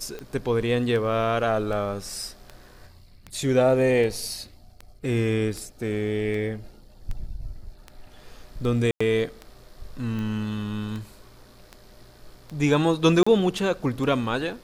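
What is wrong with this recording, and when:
tick 78 rpm -22 dBFS
8.91–9.01 gap 95 ms
13.23–13.27 gap 35 ms

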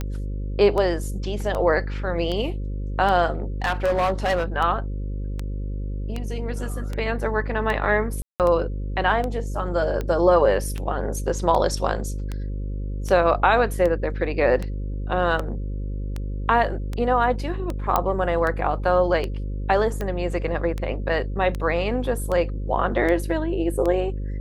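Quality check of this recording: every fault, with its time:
buzz 50 Hz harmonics 11 -28 dBFS
tick 78 rpm -15 dBFS
3.62–4.44 clipped -17 dBFS
8.22–8.4 gap 0.178 s
17.96 pop -6 dBFS

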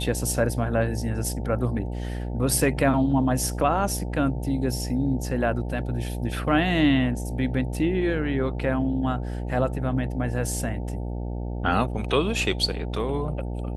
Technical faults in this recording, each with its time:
buzz 60 Hz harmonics 15 -30 dBFS

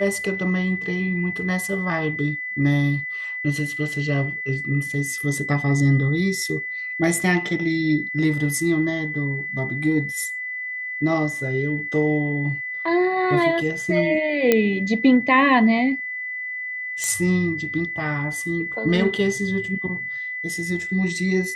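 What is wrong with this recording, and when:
tone 2000 Hz -27 dBFS
14.52 pop -3 dBFS
17.04 pop -11 dBFS

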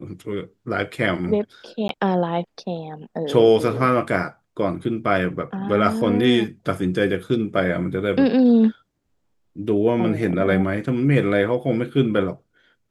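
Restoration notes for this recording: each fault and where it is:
1.88–1.89 gap 12 ms

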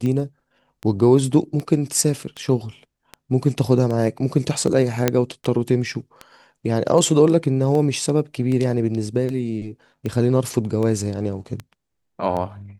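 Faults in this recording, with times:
tick 78 rpm -16 dBFS
5.08 pop -2 dBFS

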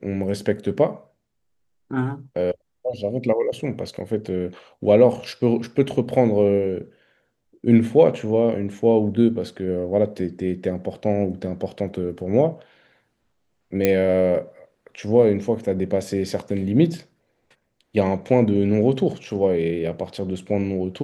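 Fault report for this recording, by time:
13.85 pop -5 dBFS

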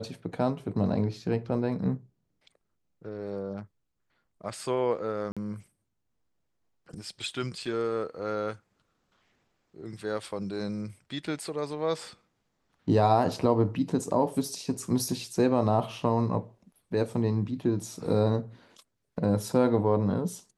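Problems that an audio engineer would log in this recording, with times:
5.32–5.37 gap 46 ms

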